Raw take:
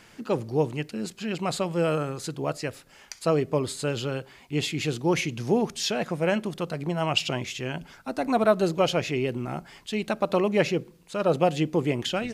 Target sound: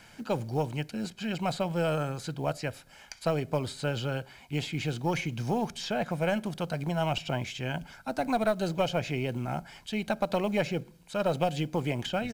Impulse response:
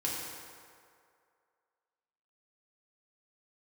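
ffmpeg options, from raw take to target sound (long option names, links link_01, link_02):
-filter_complex "[0:a]aecho=1:1:1.3:0.46,aeval=exprs='0.355*(cos(1*acos(clip(val(0)/0.355,-1,1)))-cos(1*PI/2))+0.0501*(cos(2*acos(clip(val(0)/0.355,-1,1)))-cos(2*PI/2))':channel_layout=same,acrossover=split=570|1800|4600[link_01][link_02][link_03][link_04];[link_01]acompressor=threshold=-26dB:ratio=4[link_05];[link_02]acompressor=threshold=-29dB:ratio=4[link_06];[link_03]acompressor=threshold=-38dB:ratio=4[link_07];[link_04]acompressor=threshold=-48dB:ratio=4[link_08];[link_05][link_06][link_07][link_08]amix=inputs=4:normalize=0,acrusher=bits=8:mode=log:mix=0:aa=0.000001,volume=-1.5dB"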